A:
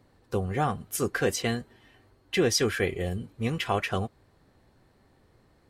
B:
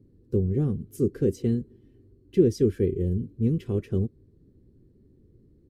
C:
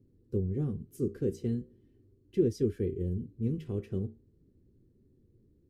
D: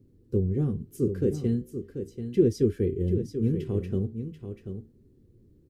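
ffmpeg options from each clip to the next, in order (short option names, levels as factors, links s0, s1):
-af "firequalizer=gain_entry='entry(390,0);entry(700,-30);entry(5100,-23);entry(13000,-20)':delay=0.05:min_phase=1,volume=2"
-af "flanger=delay=8.1:depth=8.4:regen=-69:speed=0.39:shape=sinusoidal,volume=0.708"
-af "aecho=1:1:737:0.355,volume=1.88"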